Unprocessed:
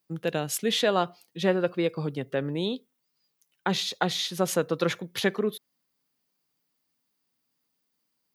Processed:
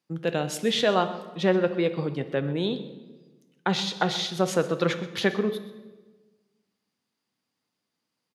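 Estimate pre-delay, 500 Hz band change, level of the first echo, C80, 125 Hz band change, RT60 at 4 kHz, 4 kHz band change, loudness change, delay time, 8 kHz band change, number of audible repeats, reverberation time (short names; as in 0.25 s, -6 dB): 6 ms, +2.0 dB, -17.0 dB, 13.0 dB, +2.5 dB, 1.0 s, +0.5 dB, +1.5 dB, 0.127 s, -3.0 dB, 1, 1.3 s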